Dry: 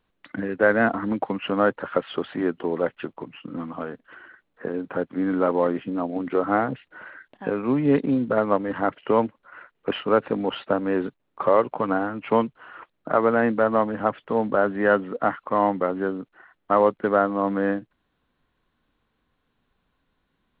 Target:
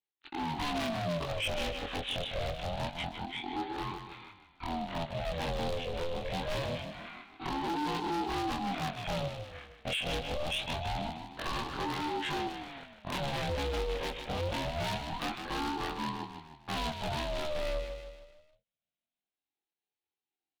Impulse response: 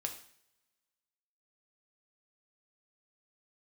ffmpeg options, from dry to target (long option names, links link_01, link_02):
-filter_complex "[0:a]afftfilt=real='re':imag='-im':win_size=2048:overlap=0.75,aresample=8000,acrusher=bits=5:mode=log:mix=0:aa=0.000001,aresample=44100,equalizer=frequency=220:width_type=o:width=1.7:gain=7.5,acrossover=split=240|3000[link_01][link_02][link_03];[link_02]acompressor=threshold=-26dB:ratio=10[link_04];[link_01][link_04][link_03]amix=inputs=3:normalize=0,agate=range=-25dB:threshold=-51dB:ratio=16:detection=peak,highpass=84,asoftclip=type=hard:threshold=-25.5dB,aexciter=amount=13.8:drive=3.6:freq=2200,highshelf=frequency=2500:gain=-9.5,aecho=1:1:154|308|462|616|770:0.316|0.152|0.0729|0.035|0.0168,asoftclip=type=tanh:threshold=-26dB,aeval=exprs='val(0)*sin(2*PI*430*n/s+430*0.4/0.25*sin(2*PI*0.25*n/s))':channel_layout=same"